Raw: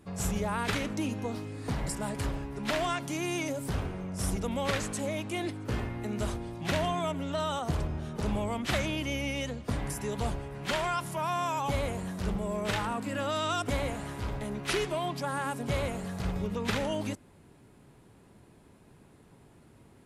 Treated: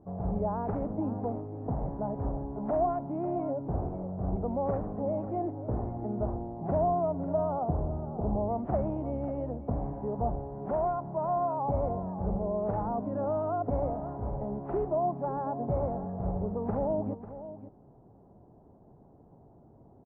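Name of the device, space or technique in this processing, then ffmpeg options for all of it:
under water: -filter_complex "[0:a]asettb=1/sr,asplit=3[s0][s1][s2];[s0]atrim=end=8.054[s3];[s1]atrim=start=8.05:end=8.49,asetpts=PTS-STARTPTS,afade=t=in:d=0.004:c=qsin,afade=t=out:st=0.436:d=0.004:c=qsin,equalizer=f=2400:t=o:w=0.87:g=-11.5[s4];[s2]atrim=start=8.486[s5];[s3][s4]acrossfade=d=0.004:c1=hsin:c2=qsin[s6];[s6][s5]acrossfade=d=0.004:c1=qsin:c2=hsin,lowpass=f=880:w=0.5412,lowpass=f=880:w=1.3066,equalizer=f=720:t=o:w=0.57:g=7,aecho=1:1:544:0.224"

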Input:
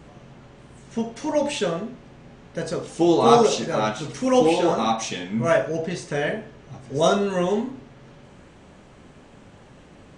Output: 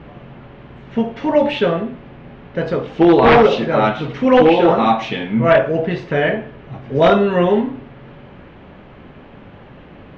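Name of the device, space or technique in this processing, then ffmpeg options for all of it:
synthesiser wavefolder: -af "aeval=exprs='0.266*(abs(mod(val(0)/0.266+3,4)-2)-1)':c=same,lowpass=f=3200:w=0.5412,lowpass=f=3200:w=1.3066,volume=2.51"

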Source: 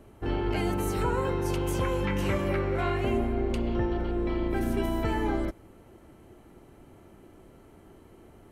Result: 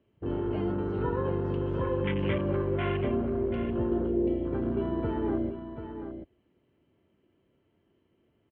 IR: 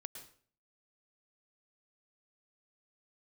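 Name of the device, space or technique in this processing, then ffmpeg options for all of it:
guitar cabinet: -filter_complex "[0:a]afwtdn=0.0224,asettb=1/sr,asplit=3[s0][s1][s2];[s0]atrim=end=3.914[s3];[s1]atrim=start=3.91:end=4.36,asetpts=PTS-STARTPTS,afade=t=in:d=0.004:c=qsin,afade=t=out:st=0.446:d=0.004:c=qsin,equalizer=f=390:w=1.2:g=5.5[s4];[s2]atrim=start=4.356[s5];[s3][s4]acrossfade=d=0.004:c1=hsin:c2=qsin[s6];[s6][s5]acrossfade=d=0.004:c1=qsin:c2=hsin,highpass=84,equalizer=f=790:t=q:w=4:g=-9,equalizer=f=1300:t=q:w=4:g=-6,equalizer=f=3000:t=q:w=4:g=7,lowpass=f=3500:w=0.5412,lowpass=f=3500:w=1.3066,aecho=1:1:735:0.355"

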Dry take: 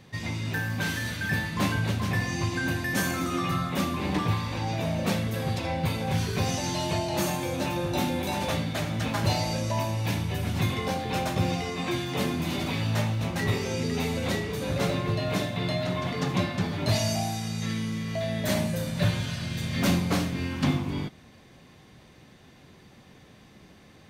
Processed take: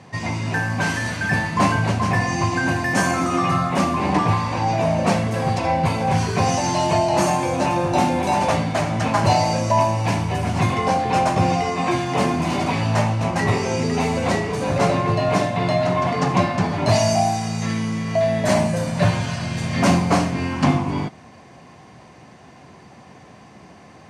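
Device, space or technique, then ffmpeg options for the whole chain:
car door speaker: -af "highpass=82,equalizer=f=710:t=q:w=4:g=8,equalizer=f=1000:t=q:w=4:g=7,equalizer=f=3600:t=q:w=4:g=-9,lowpass=f=9400:w=0.5412,lowpass=f=9400:w=1.3066,volume=2.24"

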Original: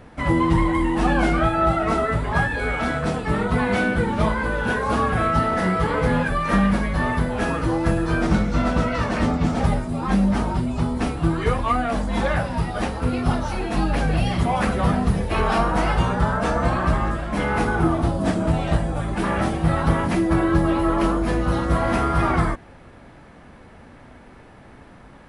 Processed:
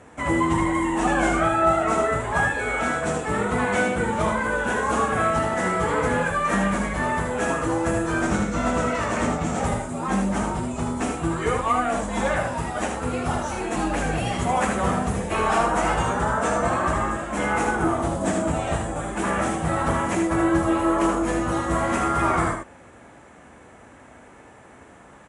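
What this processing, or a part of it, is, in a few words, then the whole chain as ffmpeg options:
budget condenser microphone: -af "highpass=89,lowpass=7100,equalizer=f=150:w=0.86:g=-7,highshelf=f=5900:t=q:w=3:g=8,aecho=1:1:78:0.562"

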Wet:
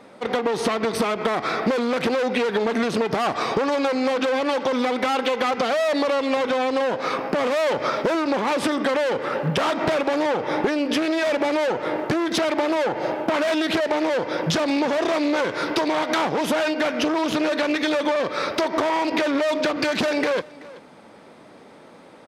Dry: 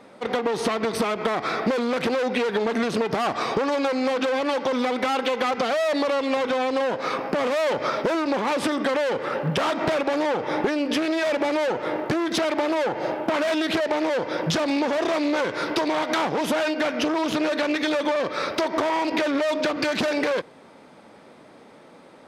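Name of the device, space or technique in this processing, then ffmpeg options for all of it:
ducked delay: -filter_complex "[0:a]asplit=3[s0][s1][s2];[s1]adelay=381,volume=0.398[s3];[s2]apad=whole_len=998921[s4];[s3][s4]sidechaincompress=threshold=0.00794:ratio=3:attack=16:release=865[s5];[s0][s5]amix=inputs=2:normalize=0,volume=1.19"

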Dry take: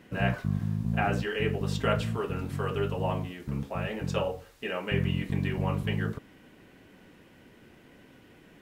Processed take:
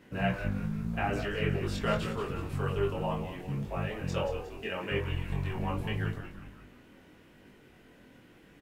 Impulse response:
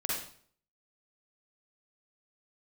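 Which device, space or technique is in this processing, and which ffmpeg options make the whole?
double-tracked vocal: -filter_complex "[0:a]asettb=1/sr,asplit=3[s0][s1][s2];[s0]atrim=end=4.984[s3];[s1]atrim=start=4.98:end=5.56,asetpts=PTS-STARTPTS,afade=t=in:d=0.004:c=qsin,afade=t=out:st=0.576:d=0.004:c=qsin,equalizer=f=250:t=o:w=1:g=-11,equalizer=f=1000:t=o:w=1:g=10,equalizer=f=2000:t=o:w=1:g=-7[s4];[s2]atrim=start=5.556[s5];[s3][s4]acrossfade=d=0.004:c1=hsin:c2=qsin[s6];[s6][s5]acrossfade=d=0.004:c1=qsin:c2=hsin,asplit=7[s7][s8][s9][s10][s11][s12][s13];[s8]adelay=180,afreqshift=-87,volume=0.335[s14];[s9]adelay=360,afreqshift=-174,volume=0.172[s15];[s10]adelay=540,afreqshift=-261,volume=0.0871[s16];[s11]adelay=720,afreqshift=-348,volume=0.0447[s17];[s12]adelay=900,afreqshift=-435,volume=0.0226[s18];[s13]adelay=1080,afreqshift=-522,volume=0.0116[s19];[s7][s14][s15][s16][s17][s18][s19]amix=inputs=7:normalize=0,asplit=2[s20][s21];[s21]adelay=20,volume=0.224[s22];[s20][s22]amix=inputs=2:normalize=0,flanger=delay=20:depth=4:speed=0.8"

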